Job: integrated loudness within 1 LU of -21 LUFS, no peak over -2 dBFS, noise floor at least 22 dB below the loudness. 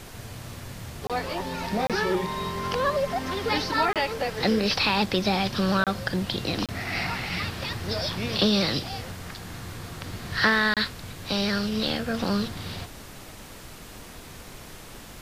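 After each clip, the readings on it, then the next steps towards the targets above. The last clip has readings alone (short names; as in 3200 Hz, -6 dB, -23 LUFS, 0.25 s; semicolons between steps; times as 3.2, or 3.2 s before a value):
dropouts 6; longest dropout 27 ms; noise floor -44 dBFS; noise floor target -48 dBFS; loudness -26.0 LUFS; peak -9.5 dBFS; loudness target -21.0 LUFS
-> interpolate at 1.07/1.87/3.93/5.84/6.66/10.74, 27 ms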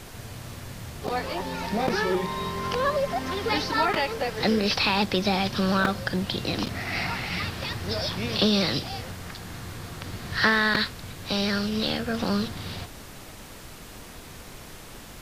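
dropouts 0; noise floor -43 dBFS; noise floor target -48 dBFS
-> noise print and reduce 6 dB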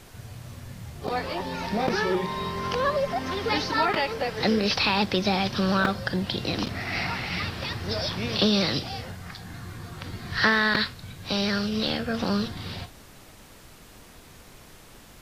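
noise floor -49 dBFS; loudness -26.0 LUFS; peak -8.0 dBFS; loudness target -21.0 LUFS
-> gain +5 dB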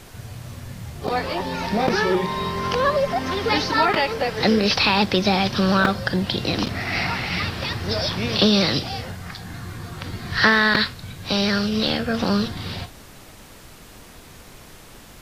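loudness -21.0 LUFS; peak -3.0 dBFS; noise floor -44 dBFS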